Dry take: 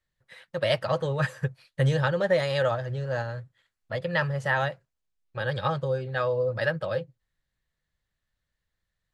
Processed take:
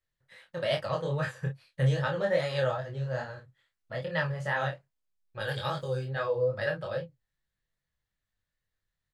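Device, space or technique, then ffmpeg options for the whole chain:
double-tracked vocal: -filter_complex "[0:a]asplit=3[a][b][c];[a]afade=t=out:st=5.39:d=0.02[d];[b]aemphasis=mode=production:type=75fm,afade=t=in:st=5.39:d=0.02,afade=t=out:st=6.05:d=0.02[e];[c]afade=t=in:st=6.05:d=0.02[f];[d][e][f]amix=inputs=3:normalize=0,asplit=2[g][h];[h]adelay=30,volume=-7dB[i];[g][i]amix=inputs=2:normalize=0,flanger=delay=19:depth=5:speed=2.4,volume=-2dB"

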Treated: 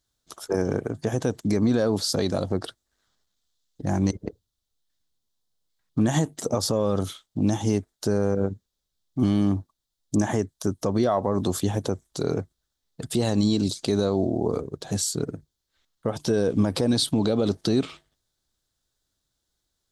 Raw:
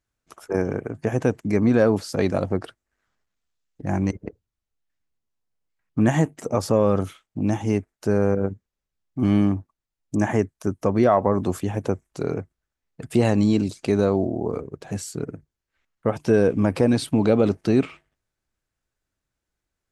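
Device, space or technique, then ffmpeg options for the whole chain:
over-bright horn tweeter: -af "highshelf=f=3k:t=q:w=3:g=6,alimiter=limit=-14dB:level=0:latency=1:release=110,volume=1.5dB"

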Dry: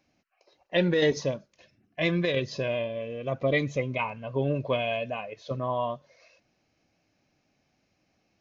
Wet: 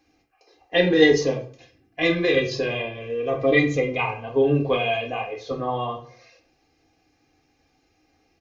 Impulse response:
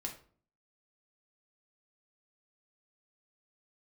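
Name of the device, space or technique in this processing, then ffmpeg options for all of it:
microphone above a desk: -filter_complex "[0:a]aecho=1:1:2.5:0.77[a];[1:a]atrim=start_sample=2205[b];[a][b]afir=irnorm=-1:irlink=0,volume=6dB"

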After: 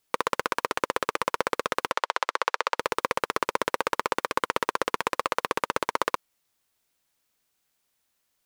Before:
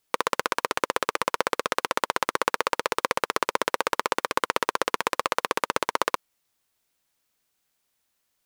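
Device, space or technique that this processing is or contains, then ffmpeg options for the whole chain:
saturation between pre-emphasis and de-emphasis: -filter_complex "[0:a]asettb=1/sr,asplit=3[a][b][c];[a]atrim=end=1.924[d];[b]atrim=start=1.92:end=2.79,asetpts=PTS-STARTPTS,afade=t=in:d=0.004:c=qsin,afade=t=out:st=0.866:d=0.004:c=qsin,acrossover=split=440 7100:gain=0.0631 1 0.2[e][f][g];[e][f][g]amix=inputs=3:normalize=0[h];[c]atrim=start=2.786[i];[d][h]acrossfade=d=0.004:c1=hsin:c2=qsin[j];[j][i]acrossfade=d=0.004:c1=qsin:c2=hsin,highshelf=f=6.5k:g=11,asoftclip=type=tanh:threshold=-3.5dB,highshelf=f=6.5k:g=-11"

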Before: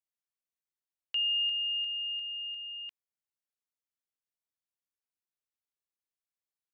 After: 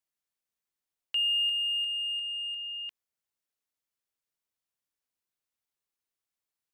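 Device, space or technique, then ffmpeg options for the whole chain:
parallel distortion: -filter_complex "[0:a]asplit=2[a][b];[b]asoftclip=type=hard:threshold=-39dB,volume=-11dB[c];[a][c]amix=inputs=2:normalize=0,volume=1.5dB"

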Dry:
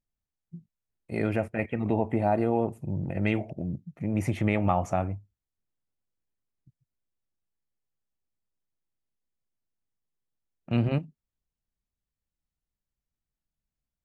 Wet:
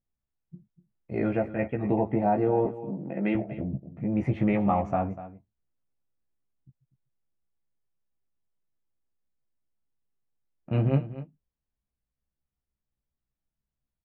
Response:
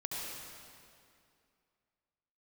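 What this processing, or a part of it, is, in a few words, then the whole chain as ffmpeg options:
phone in a pocket: -filter_complex "[0:a]asettb=1/sr,asplit=3[a][b][c];[a]atrim=end=2.654[d];[b]atrim=start=2.65:end=3.35,asetpts=PTS-STARTPTS,afade=t=in:d=0.004:c=qsin,afade=t=out:st=0.696:d=0.004:c=qsin,highpass=f=190:w=0.5412,highpass=f=190:w=1.3066[e];[c]atrim=start=3.346[f];[d][e]acrossfade=d=0.004:c1=hsin:c2=qsin[g];[g][f]acrossfade=d=0.004:c1=qsin:c2=hsin,lowpass=3.5k,highshelf=f=2.2k:g=-11,asplit=2[h][i];[i]adelay=15,volume=-3dB[j];[h][j]amix=inputs=2:normalize=0,aecho=1:1:245:0.188"

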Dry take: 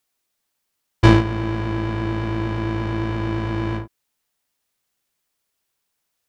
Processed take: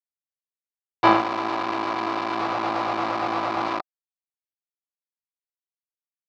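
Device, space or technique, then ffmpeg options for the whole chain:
hand-held game console: -filter_complex "[0:a]asettb=1/sr,asplit=3[a][b][c];[a]atrim=end=2.374[d];[b]atrim=start=2.37:end=3.68,asetpts=PTS-STARTPTS,afade=t=in:d=0.004:c=qsin,afade=t=out:st=1.306:d=0.004:c=qsin,lowshelf=f=160:g=5[e];[c]atrim=start=3.676[f];[d][e]acrossfade=d=0.004:c1=hsin:c2=qsin[g];[g][f]acrossfade=d=0.004:c1=qsin:c2=hsin,acrusher=bits=3:mix=0:aa=0.000001,highpass=430,equalizer=f=440:t=q:w=4:g=-7,equalizer=f=750:t=q:w=4:g=9,equalizer=f=1.2k:t=q:w=4:g=9,equalizer=f=1.7k:t=q:w=4:g=-5,equalizer=f=3.2k:t=q:w=4:g=-6,lowpass=f=4.2k:w=0.5412,lowpass=f=4.2k:w=1.3066"

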